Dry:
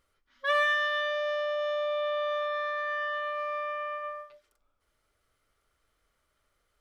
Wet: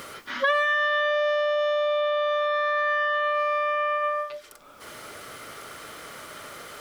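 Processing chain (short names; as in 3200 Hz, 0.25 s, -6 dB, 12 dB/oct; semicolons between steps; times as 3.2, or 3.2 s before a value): three-band squash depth 100%; gain +6 dB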